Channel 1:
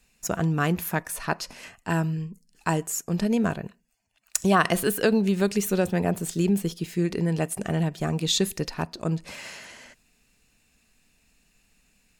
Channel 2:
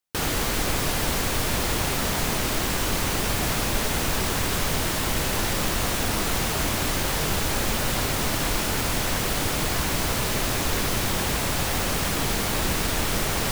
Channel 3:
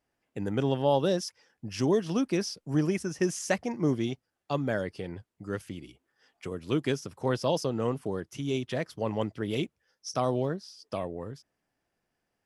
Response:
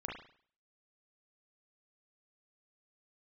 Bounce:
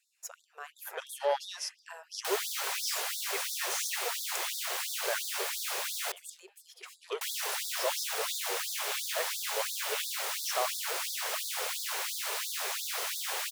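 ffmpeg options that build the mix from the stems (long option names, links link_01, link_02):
-filter_complex "[0:a]acompressor=threshold=-29dB:ratio=6,volume=-10.5dB,asplit=2[link_01][link_02];[link_02]volume=-7.5dB[link_03];[1:a]adelay=2100,volume=-6.5dB,asplit=3[link_04][link_05][link_06];[link_04]atrim=end=6.12,asetpts=PTS-STARTPTS,afade=type=out:start_time=6.116:duration=0.004:curve=hsin[link_07];[link_05]atrim=start=6.12:end=7.21,asetpts=PTS-STARTPTS,volume=0[link_08];[link_06]atrim=start=7.21,asetpts=PTS-STARTPTS,afade=type=in:duration=0.004:curve=hsin[link_09];[link_07][link_08][link_09]concat=n=3:v=0:a=1[link_10];[2:a]asoftclip=type=tanh:threshold=-18dB,adelay=400,volume=0.5dB[link_11];[3:a]atrim=start_sample=2205[link_12];[link_03][link_12]afir=irnorm=-1:irlink=0[link_13];[link_01][link_10][link_11][link_13]amix=inputs=4:normalize=0,lowshelf=frequency=310:gain=-7.5,afftfilt=real='re*gte(b*sr/1024,350*pow(3500/350,0.5+0.5*sin(2*PI*2.9*pts/sr)))':imag='im*gte(b*sr/1024,350*pow(3500/350,0.5+0.5*sin(2*PI*2.9*pts/sr)))':win_size=1024:overlap=0.75"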